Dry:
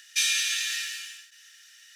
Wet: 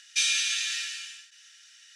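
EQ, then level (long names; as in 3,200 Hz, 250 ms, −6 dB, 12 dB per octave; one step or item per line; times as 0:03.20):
Savitzky-Golay smoothing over 9 samples
notch filter 1,800 Hz, Q 12
0.0 dB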